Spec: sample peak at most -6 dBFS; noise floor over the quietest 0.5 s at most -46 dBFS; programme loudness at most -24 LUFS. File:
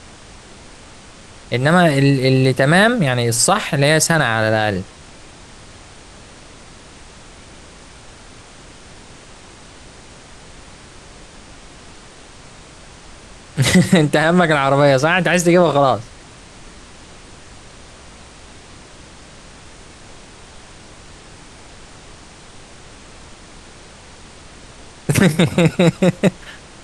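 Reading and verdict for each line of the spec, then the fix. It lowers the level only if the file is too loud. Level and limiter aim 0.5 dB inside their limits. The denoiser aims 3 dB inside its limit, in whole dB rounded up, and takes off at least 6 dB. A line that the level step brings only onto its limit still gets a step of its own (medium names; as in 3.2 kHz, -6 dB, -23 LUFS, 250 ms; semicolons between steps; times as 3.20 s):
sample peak -2.5 dBFS: fail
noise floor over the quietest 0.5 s -40 dBFS: fail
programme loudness -14.5 LUFS: fail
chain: trim -10 dB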